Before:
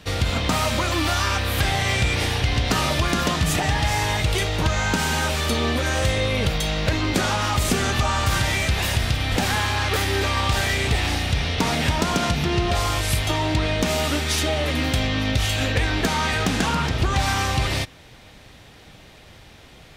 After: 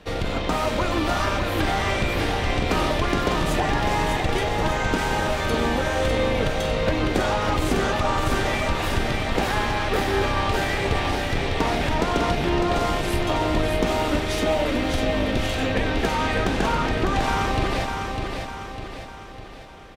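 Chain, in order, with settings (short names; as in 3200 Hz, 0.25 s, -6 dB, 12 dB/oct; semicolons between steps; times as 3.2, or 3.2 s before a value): octaver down 2 oct, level +3 dB; tone controls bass -14 dB, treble -5 dB; added harmonics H 4 -27 dB, 8 -35 dB, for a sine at -9 dBFS; tilt shelf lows +5.5 dB, about 910 Hz; on a send: feedback echo 0.602 s, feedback 49%, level -5 dB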